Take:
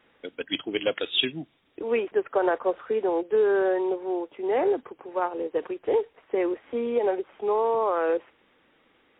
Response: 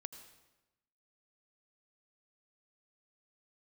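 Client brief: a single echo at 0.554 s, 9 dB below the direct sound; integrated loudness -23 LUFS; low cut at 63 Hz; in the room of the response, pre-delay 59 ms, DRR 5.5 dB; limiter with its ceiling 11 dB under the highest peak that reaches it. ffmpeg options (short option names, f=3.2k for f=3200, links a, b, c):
-filter_complex "[0:a]highpass=63,alimiter=limit=-22dB:level=0:latency=1,aecho=1:1:554:0.355,asplit=2[a][b];[1:a]atrim=start_sample=2205,adelay=59[c];[b][c]afir=irnorm=-1:irlink=0,volume=-1.5dB[d];[a][d]amix=inputs=2:normalize=0,volume=7dB"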